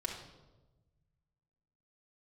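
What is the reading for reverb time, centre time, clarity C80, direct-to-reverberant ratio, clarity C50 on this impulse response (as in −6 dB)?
1.1 s, 31 ms, 8.5 dB, −2.0 dB, 5.0 dB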